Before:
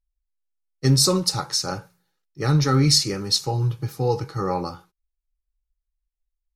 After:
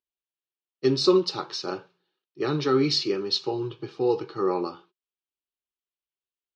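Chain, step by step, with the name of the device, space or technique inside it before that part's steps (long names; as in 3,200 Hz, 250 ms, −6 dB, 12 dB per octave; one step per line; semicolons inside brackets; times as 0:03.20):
phone earpiece (loudspeaker in its box 350–3,800 Hz, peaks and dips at 370 Hz +9 dB, 530 Hz −7 dB, 810 Hz −7 dB, 1,400 Hz −6 dB, 2,000 Hz −10 dB, 3,000 Hz +4 dB)
level +2 dB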